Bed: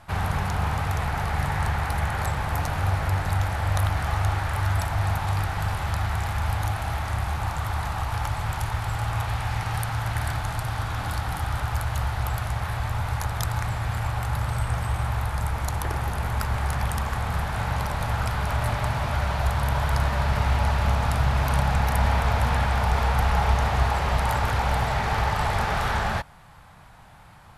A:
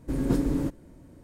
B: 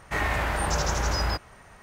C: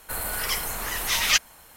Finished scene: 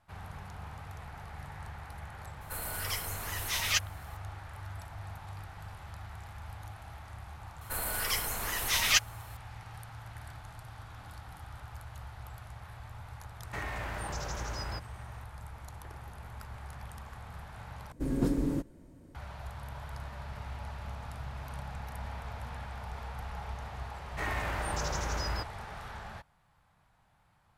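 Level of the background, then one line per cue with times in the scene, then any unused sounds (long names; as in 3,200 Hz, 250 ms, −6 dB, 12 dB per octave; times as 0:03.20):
bed −19 dB
0:02.41: mix in C −8.5 dB
0:07.61: mix in C −4.5 dB
0:13.42: mix in B −5.5 dB + downward compressor 3 to 1, threshold −30 dBFS
0:17.92: overwrite with A −4 dB
0:24.06: mix in B −8 dB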